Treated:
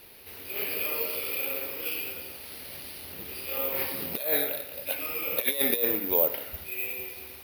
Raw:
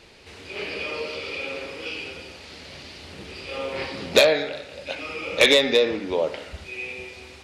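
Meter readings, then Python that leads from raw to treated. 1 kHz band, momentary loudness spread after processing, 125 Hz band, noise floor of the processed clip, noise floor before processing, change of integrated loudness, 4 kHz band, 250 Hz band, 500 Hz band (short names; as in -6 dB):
-7.0 dB, 15 LU, -7.5 dB, -44 dBFS, -45 dBFS, -4.5 dB, -12.5 dB, -7.0 dB, -10.5 dB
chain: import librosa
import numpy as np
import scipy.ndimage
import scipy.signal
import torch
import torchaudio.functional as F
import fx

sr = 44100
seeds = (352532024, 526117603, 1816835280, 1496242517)

y = scipy.signal.sosfilt(scipy.signal.butter(4, 6700.0, 'lowpass', fs=sr, output='sos'), x)
y = fx.low_shelf(y, sr, hz=180.0, db=-3.5)
y = fx.over_compress(y, sr, threshold_db=-21.0, ratio=-0.5)
y = (np.kron(scipy.signal.resample_poly(y, 1, 3), np.eye(3)[0]) * 3)[:len(y)]
y = y * librosa.db_to_amplitude(-7.0)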